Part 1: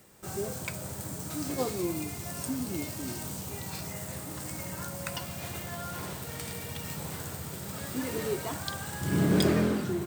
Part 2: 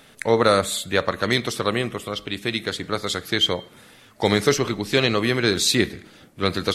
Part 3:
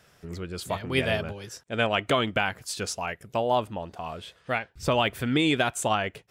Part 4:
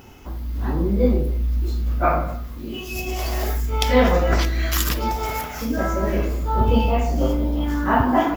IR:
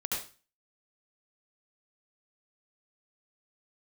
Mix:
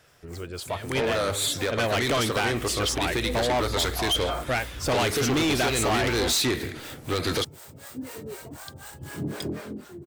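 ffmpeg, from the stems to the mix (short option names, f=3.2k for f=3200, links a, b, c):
-filter_complex "[0:a]adynamicequalizer=threshold=0.0112:dfrequency=210:dqfactor=1.5:tfrequency=210:tqfactor=1.5:attack=5:release=100:ratio=0.375:range=3:mode=boostabove:tftype=bell,acrossover=split=500[a][b];[a]aeval=exprs='val(0)*(1-1/2+1/2*cos(2*PI*4*n/s))':c=same[c];[b]aeval=exprs='val(0)*(1-1/2-1/2*cos(2*PI*4*n/s))':c=same[d];[c][d]amix=inputs=2:normalize=0,volume=-10dB[e];[1:a]alimiter=limit=-14dB:level=0:latency=1:release=195,adelay=700,volume=1dB[f];[2:a]volume=0.5dB,asplit=2[g][h];[3:a]adelay=2250,volume=-17.5dB[i];[h]apad=whole_len=467941[j];[i][j]sidechaingate=range=-33dB:threshold=-55dB:ratio=16:detection=peak[k];[e][f][g][k]amix=inputs=4:normalize=0,equalizer=f=190:t=o:w=0.28:g=-13.5,dynaudnorm=f=210:g=13:m=10dB,asoftclip=type=tanh:threshold=-20.5dB"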